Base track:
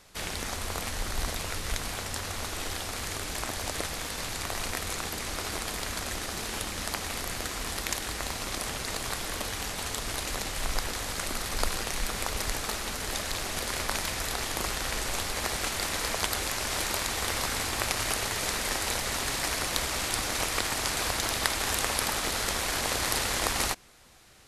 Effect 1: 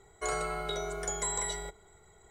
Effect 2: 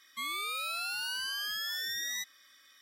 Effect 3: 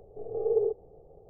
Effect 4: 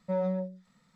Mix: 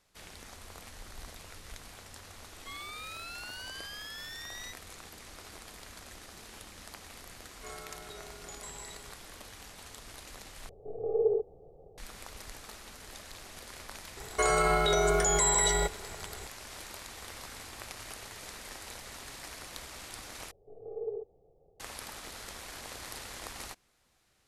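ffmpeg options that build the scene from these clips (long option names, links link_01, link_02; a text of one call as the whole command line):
ffmpeg -i bed.wav -i cue0.wav -i cue1.wav -i cue2.wav -filter_complex "[1:a]asplit=2[link_01][link_02];[3:a]asplit=2[link_03][link_04];[0:a]volume=-15dB[link_05];[2:a]highshelf=frequency=7800:gain=-8.5[link_06];[link_01]aresample=32000,aresample=44100[link_07];[link_02]alimiter=level_in=28.5dB:limit=-1dB:release=50:level=0:latency=1[link_08];[link_05]asplit=3[link_09][link_10][link_11];[link_09]atrim=end=10.694[link_12];[link_03]atrim=end=1.29,asetpts=PTS-STARTPTS,volume=-1dB[link_13];[link_10]atrim=start=11.976:end=20.514[link_14];[link_04]atrim=end=1.29,asetpts=PTS-STARTPTS,volume=-11dB[link_15];[link_11]atrim=start=21.796[link_16];[link_06]atrim=end=2.81,asetpts=PTS-STARTPTS,volume=-7dB,afade=type=in:duration=0.004:curve=hsin,afade=type=out:start_time=2.806:duration=0.004:curve=hsin,adelay=2490[link_17];[link_07]atrim=end=2.3,asetpts=PTS-STARTPTS,volume=-13.5dB,afade=type=in:duration=0.004:curve=hsin,afade=type=out:start_time=2.296:duration=0.004:curve=hsin,adelay=7410[link_18];[link_08]atrim=end=2.3,asetpts=PTS-STARTPTS,volume=-16dB,afade=type=in:duration=0.004:curve=hsin,afade=type=out:start_time=2.296:duration=0.004:curve=hsin,adelay=14170[link_19];[link_12][link_13]acrossfade=duration=0.004:curve1=hsin:curve2=hsin[link_20];[link_20][link_14]acrossfade=duration=0.004:curve1=hsin:curve2=hsin[link_21];[link_21][link_15]acrossfade=duration=0.004:curve1=hsin:curve2=hsin[link_22];[link_22][link_16]acrossfade=duration=0.004:curve1=hsin:curve2=hsin[link_23];[link_23][link_17][link_18][link_19]amix=inputs=4:normalize=0" out.wav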